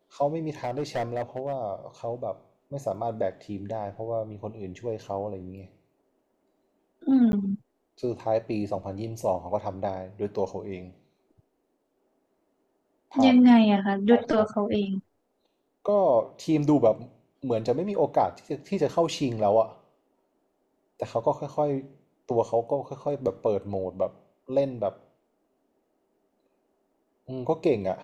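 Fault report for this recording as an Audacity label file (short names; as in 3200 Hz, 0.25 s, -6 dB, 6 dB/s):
0.640000	1.550000	clipped -24 dBFS
7.320000	7.330000	gap 11 ms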